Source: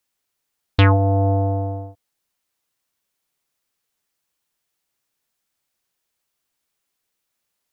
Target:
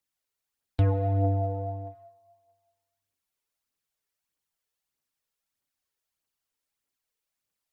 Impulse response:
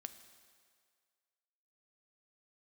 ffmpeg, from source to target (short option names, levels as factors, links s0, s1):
-filter_complex "[1:a]atrim=start_sample=2205,asetrate=52920,aresample=44100[s0];[0:a][s0]afir=irnorm=-1:irlink=0,acrossover=split=160|770[s1][s2][s3];[s3]acompressor=threshold=0.00501:ratio=6[s4];[s1][s2][s4]amix=inputs=3:normalize=0,aphaser=in_gain=1:out_gain=1:delay=2.4:decay=0.43:speed=1.6:type=triangular,volume=0.708"